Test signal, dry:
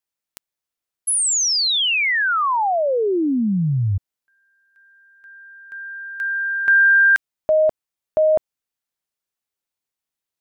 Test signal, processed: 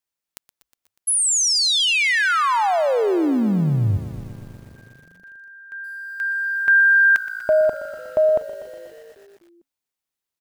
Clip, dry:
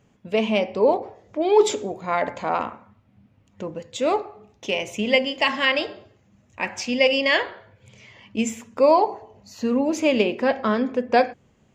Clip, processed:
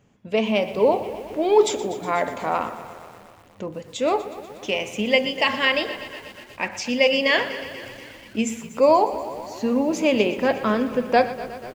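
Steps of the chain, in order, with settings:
echo with shifted repeats 248 ms, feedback 60%, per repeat −56 Hz, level −21 dB
feedback echo at a low word length 121 ms, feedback 80%, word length 7 bits, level −15 dB

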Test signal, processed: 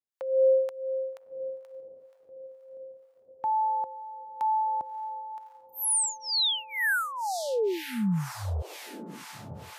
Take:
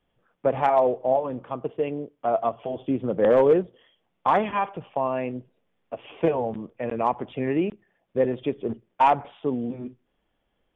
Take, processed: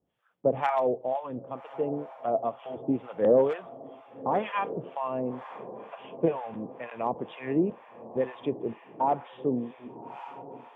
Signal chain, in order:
high-pass filter 91 Hz
feedback delay with all-pass diffusion 1,197 ms, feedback 57%, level −15 dB
two-band tremolo in antiphase 2.1 Hz, depth 100%, crossover 790 Hz

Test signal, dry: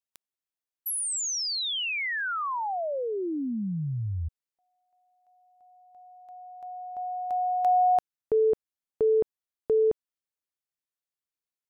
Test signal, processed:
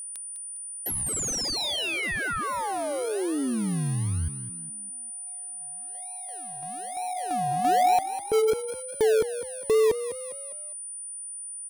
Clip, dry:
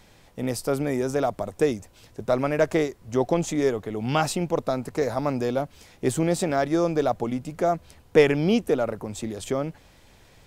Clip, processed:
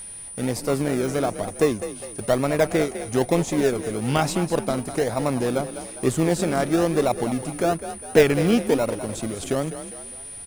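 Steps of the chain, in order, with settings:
in parallel at −8 dB: sample-and-hold swept by an LFO 39×, swing 60% 1.1 Hz
on the sum: echo with shifted repeats 203 ms, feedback 40%, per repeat +39 Hz, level −12 dB
steady tone 9,400 Hz −41 dBFS
one half of a high-frequency compander encoder only

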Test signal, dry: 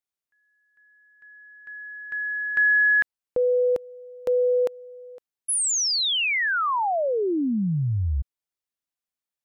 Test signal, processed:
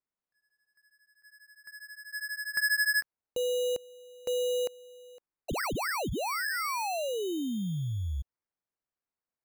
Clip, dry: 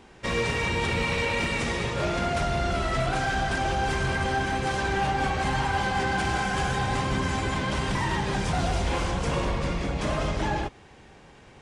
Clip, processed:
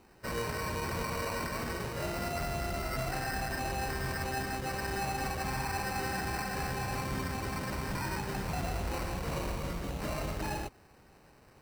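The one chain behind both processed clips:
decimation without filtering 13×
level −8.5 dB

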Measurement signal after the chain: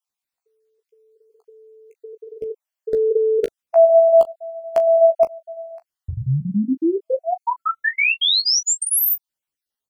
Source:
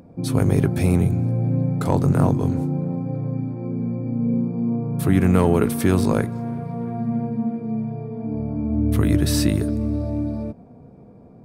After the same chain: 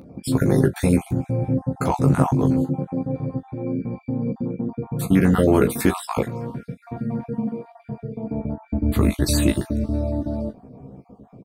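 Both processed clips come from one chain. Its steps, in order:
time-frequency cells dropped at random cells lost 41%
dynamic equaliser 110 Hz, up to −4 dB, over −34 dBFS, Q 0.72
ambience of single reflections 15 ms −4 dB, 38 ms −15 dB
level +2.5 dB

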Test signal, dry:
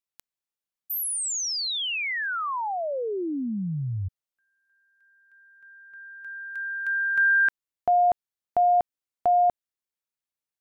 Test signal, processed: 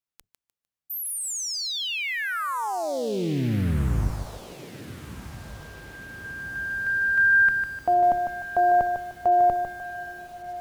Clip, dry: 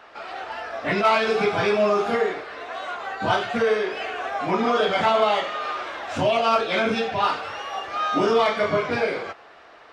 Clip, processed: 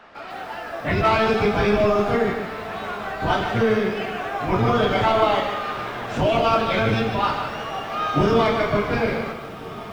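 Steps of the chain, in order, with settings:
sub-octave generator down 1 octave, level +3 dB
high-shelf EQ 3,600 Hz −3 dB
on a send: feedback delay with all-pass diffusion 1,510 ms, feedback 57%, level −15.5 dB
on the sum: feedback echo at a low word length 151 ms, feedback 35%, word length 8 bits, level −7 dB

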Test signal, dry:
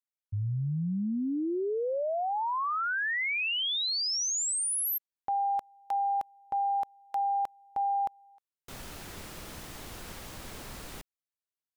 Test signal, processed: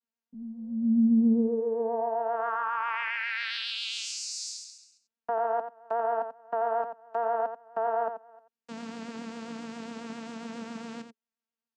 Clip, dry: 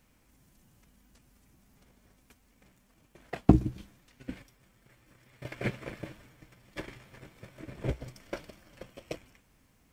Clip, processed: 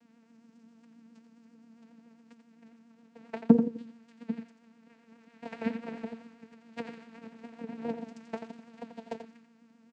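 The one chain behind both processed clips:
channel vocoder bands 8, saw 229 Hz
in parallel at +3 dB: downward compressor, threshold −43 dBFS
on the sum: pitch vibrato 7.4 Hz 51 cents
notch filter 420 Hz, Q 12
single-tap delay 87 ms −9 dB

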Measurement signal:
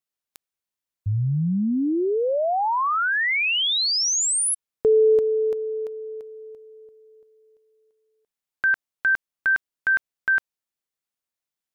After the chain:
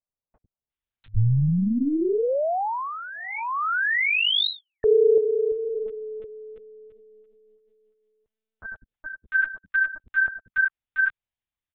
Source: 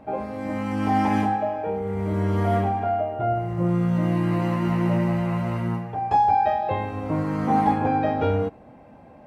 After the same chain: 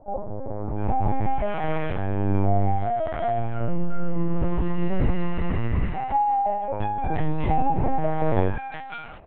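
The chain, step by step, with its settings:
three-band delay without the direct sound mids, lows, highs 90/700 ms, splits 250/1,000 Hz
linear-prediction vocoder at 8 kHz pitch kept
low-shelf EQ 110 Hz +7.5 dB

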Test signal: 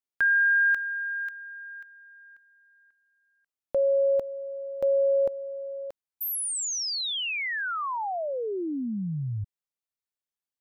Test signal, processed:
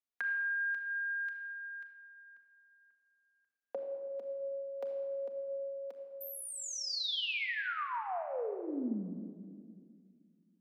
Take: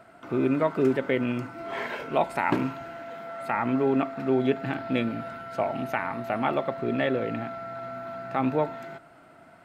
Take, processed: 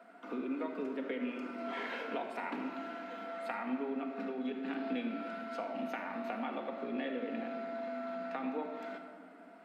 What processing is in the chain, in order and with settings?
Butterworth high-pass 190 Hz 96 dB per octave
downward compressor 6 to 1, threshold −32 dBFS
high-shelf EQ 5,100 Hz −7.5 dB
rectangular room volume 3,200 cubic metres, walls mixed, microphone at 1.8 metres
dynamic equaliser 3,800 Hz, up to +5 dB, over −52 dBFS, Q 0.88
level −6 dB

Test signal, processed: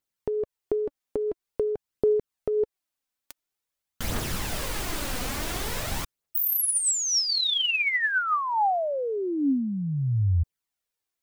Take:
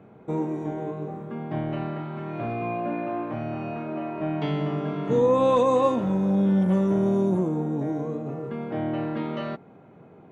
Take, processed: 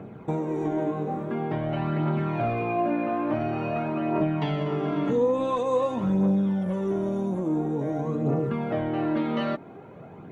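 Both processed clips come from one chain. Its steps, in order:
downward compressor 10 to 1, threshold −29 dBFS
phase shifter 0.48 Hz, delay 4.1 ms, feedback 42%
level +6 dB

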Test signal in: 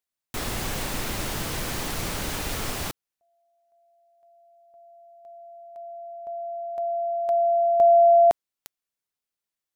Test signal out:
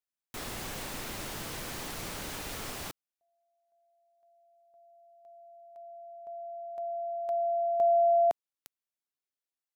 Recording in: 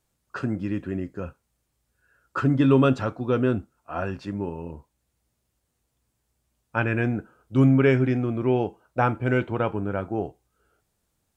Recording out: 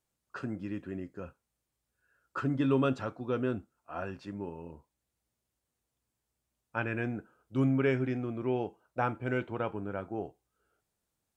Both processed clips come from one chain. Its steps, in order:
low-shelf EQ 130 Hz −6 dB
level −8 dB

